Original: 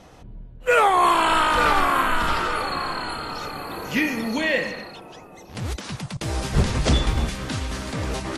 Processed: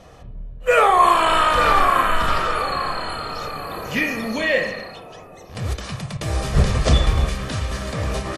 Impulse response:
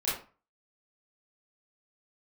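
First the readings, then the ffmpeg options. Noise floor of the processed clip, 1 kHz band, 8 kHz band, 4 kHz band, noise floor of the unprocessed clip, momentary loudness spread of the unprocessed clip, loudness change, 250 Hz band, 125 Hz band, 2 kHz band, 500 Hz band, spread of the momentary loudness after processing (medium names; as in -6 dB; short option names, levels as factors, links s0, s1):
-41 dBFS, +3.0 dB, +0.5 dB, +1.5 dB, -44 dBFS, 14 LU, +2.5 dB, -1.0 dB, +4.0 dB, +1.5 dB, +3.5 dB, 15 LU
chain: -filter_complex "[0:a]aecho=1:1:1.7:0.39,asplit=2[s0][s1];[1:a]atrim=start_sample=2205,lowpass=2900[s2];[s1][s2]afir=irnorm=-1:irlink=0,volume=0.237[s3];[s0][s3]amix=inputs=2:normalize=0"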